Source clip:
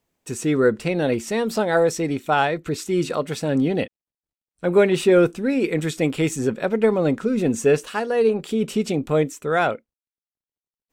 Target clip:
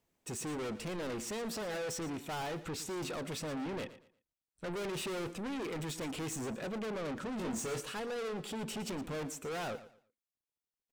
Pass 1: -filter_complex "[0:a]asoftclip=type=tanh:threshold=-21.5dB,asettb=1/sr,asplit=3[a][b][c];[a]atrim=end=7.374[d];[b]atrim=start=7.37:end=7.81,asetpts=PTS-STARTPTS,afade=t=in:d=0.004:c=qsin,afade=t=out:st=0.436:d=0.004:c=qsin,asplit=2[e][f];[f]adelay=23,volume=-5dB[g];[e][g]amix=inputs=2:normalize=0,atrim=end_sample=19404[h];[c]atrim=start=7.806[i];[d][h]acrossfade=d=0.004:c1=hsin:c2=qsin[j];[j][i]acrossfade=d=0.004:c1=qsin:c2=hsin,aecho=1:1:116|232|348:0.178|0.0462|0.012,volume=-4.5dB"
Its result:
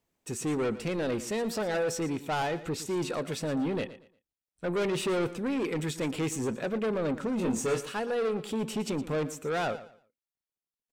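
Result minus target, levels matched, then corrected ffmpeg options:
soft clip: distortion -5 dB
-filter_complex "[0:a]asoftclip=type=tanh:threshold=-32.5dB,asettb=1/sr,asplit=3[a][b][c];[a]atrim=end=7.374[d];[b]atrim=start=7.37:end=7.81,asetpts=PTS-STARTPTS,afade=t=in:d=0.004:c=qsin,afade=t=out:st=0.436:d=0.004:c=qsin,asplit=2[e][f];[f]adelay=23,volume=-5dB[g];[e][g]amix=inputs=2:normalize=0,atrim=end_sample=19404[h];[c]atrim=start=7.806[i];[d][h]acrossfade=d=0.004:c1=hsin:c2=qsin[j];[j][i]acrossfade=d=0.004:c1=qsin:c2=hsin,aecho=1:1:116|232|348:0.178|0.0462|0.012,volume=-4.5dB"

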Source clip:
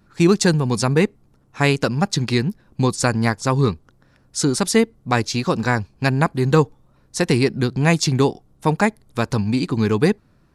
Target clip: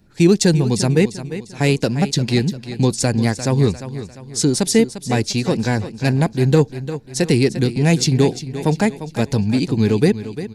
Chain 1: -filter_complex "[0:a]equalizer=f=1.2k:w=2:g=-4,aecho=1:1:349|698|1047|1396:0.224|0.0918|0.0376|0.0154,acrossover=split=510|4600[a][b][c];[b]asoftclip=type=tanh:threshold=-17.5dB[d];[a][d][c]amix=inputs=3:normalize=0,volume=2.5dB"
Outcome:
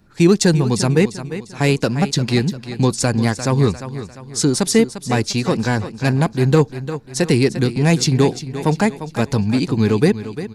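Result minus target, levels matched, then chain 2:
1000 Hz band +2.5 dB
-filter_complex "[0:a]equalizer=f=1.2k:w=2:g=-12.5,aecho=1:1:349|698|1047|1396:0.224|0.0918|0.0376|0.0154,acrossover=split=510|4600[a][b][c];[b]asoftclip=type=tanh:threshold=-17.5dB[d];[a][d][c]amix=inputs=3:normalize=0,volume=2.5dB"

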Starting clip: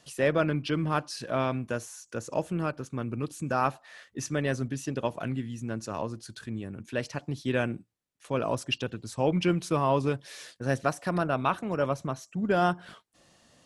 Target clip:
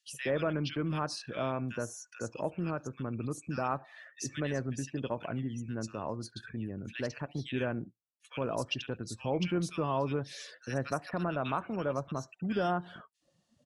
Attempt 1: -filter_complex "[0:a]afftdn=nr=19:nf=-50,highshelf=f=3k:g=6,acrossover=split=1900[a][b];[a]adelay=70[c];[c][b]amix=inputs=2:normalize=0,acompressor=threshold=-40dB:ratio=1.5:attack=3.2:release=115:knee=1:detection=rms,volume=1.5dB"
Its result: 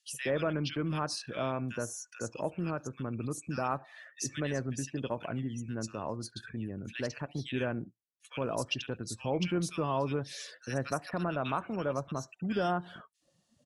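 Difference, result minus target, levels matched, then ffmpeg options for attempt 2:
8000 Hz band +3.5 dB
-filter_complex "[0:a]afftdn=nr=19:nf=-50,highshelf=f=3k:g=6,acrossover=split=1900[a][b];[a]adelay=70[c];[c][b]amix=inputs=2:normalize=0,acompressor=threshold=-40dB:ratio=1.5:attack=3.2:release=115:knee=1:detection=rms,highshelf=f=6.4k:g=-7,volume=1.5dB"

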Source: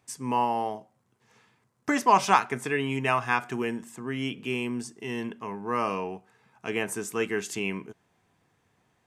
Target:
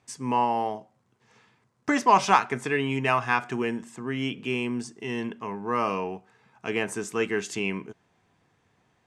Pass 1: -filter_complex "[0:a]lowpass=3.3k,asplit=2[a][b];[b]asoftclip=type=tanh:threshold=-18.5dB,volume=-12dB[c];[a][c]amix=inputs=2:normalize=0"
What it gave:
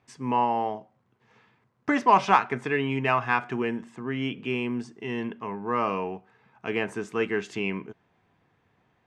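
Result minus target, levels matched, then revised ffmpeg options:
8000 Hz band -11.0 dB
-filter_complex "[0:a]lowpass=7.5k,asplit=2[a][b];[b]asoftclip=type=tanh:threshold=-18.5dB,volume=-12dB[c];[a][c]amix=inputs=2:normalize=0"

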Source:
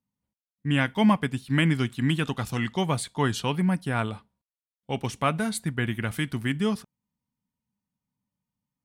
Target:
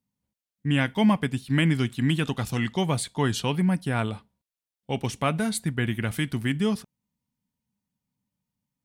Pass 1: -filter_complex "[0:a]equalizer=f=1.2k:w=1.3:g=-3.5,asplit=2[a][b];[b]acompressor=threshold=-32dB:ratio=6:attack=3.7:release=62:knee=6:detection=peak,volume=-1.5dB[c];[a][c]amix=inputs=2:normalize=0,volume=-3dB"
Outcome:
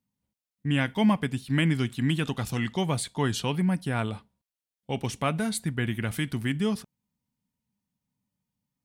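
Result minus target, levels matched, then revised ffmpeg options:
compressor: peak gain reduction +8.5 dB
-filter_complex "[0:a]equalizer=f=1.2k:w=1.3:g=-3.5,asplit=2[a][b];[b]acompressor=threshold=-22dB:ratio=6:attack=3.7:release=62:knee=6:detection=peak,volume=-1.5dB[c];[a][c]amix=inputs=2:normalize=0,volume=-3dB"

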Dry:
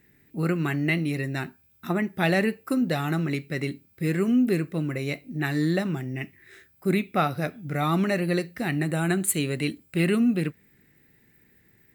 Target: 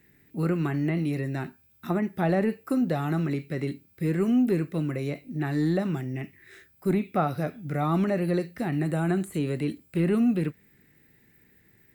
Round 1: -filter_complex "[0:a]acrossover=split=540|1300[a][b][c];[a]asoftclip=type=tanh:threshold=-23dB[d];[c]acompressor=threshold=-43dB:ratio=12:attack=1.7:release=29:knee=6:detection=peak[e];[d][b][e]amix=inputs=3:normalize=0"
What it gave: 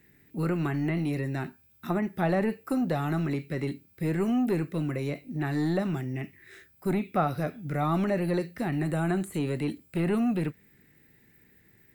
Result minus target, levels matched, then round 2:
soft clip: distortion +13 dB
-filter_complex "[0:a]acrossover=split=540|1300[a][b][c];[a]asoftclip=type=tanh:threshold=-14dB[d];[c]acompressor=threshold=-43dB:ratio=12:attack=1.7:release=29:knee=6:detection=peak[e];[d][b][e]amix=inputs=3:normalize=0"

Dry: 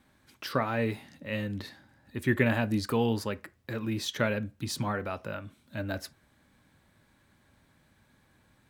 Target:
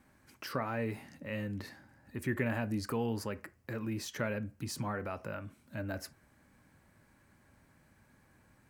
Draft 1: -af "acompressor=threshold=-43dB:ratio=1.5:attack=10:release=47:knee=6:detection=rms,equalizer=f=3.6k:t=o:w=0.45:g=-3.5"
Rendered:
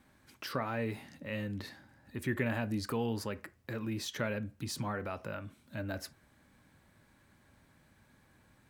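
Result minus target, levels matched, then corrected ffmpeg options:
4000 Hz band +3.0 dB
-af "acompressor=threshold=-43dB:ratio=1.5:attack=10:release=47:knee=6:detection=rms,equalizer=f=3.6k:t=o:w=0.45:g=-11"

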